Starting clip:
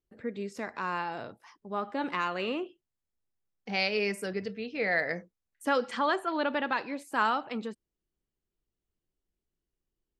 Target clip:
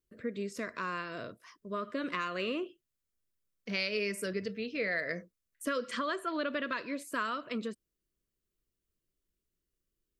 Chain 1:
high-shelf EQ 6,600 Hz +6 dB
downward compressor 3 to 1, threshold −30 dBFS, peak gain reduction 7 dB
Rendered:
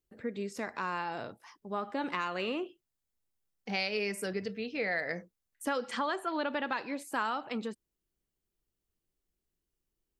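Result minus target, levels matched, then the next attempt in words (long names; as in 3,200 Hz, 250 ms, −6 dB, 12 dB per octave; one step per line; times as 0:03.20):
1,000 Hz band +2.5 dB
high-shelf EQ 6,600 Hz +6 dB
downward compressor 3 to 1, threshold −30 dBFS, peak gain reduction 7 dB
Butterworth band-reject 820 Hz, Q 2.6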